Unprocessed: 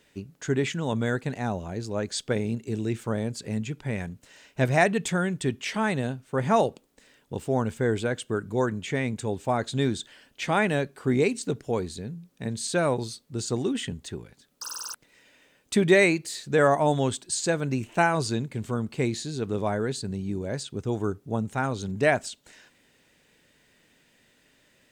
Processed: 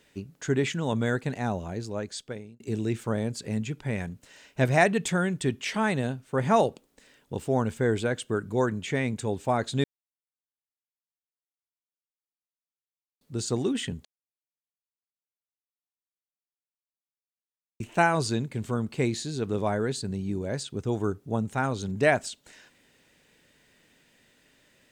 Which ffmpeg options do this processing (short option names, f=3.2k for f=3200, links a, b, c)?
-filter_complex "[0:a]asplit=6[a][b][c][d][e][f];[a]atrim=end=2.6,asetpts=PTS-STARTPTS,afade=t=out:st=1.68:d=0.92[g];[b]atrim=start=2.6:end=9.84,asetpts=PTS-STARTPTS,afade=t=in:d=0.004:c=hsin,afade=t=out:st=7.236:d=0.004:c=hsin[h];[c]atrim=start=9.84:end=13.21,asetpts=PTS-STARTPTS,volume=0[i];[d]atrim=start=13.21:end=14.05,asetpts=PTS-STARTPTS,afade=t=in:d=0.004:c=hsin,afade=t=out:st=0.836:d=0.004:c=hsin[j];[e]atrim=start=14.05:end=17.8,asetpts=PTS-STARTPTS,volume=0[k];[f]atrim=start=17.8,asetpts=PTS-STARTPTS,afade=t=in:d=0.004:c=hsin[l];[g][h][i][j][k][l]concat=n=6:v=0:a=1"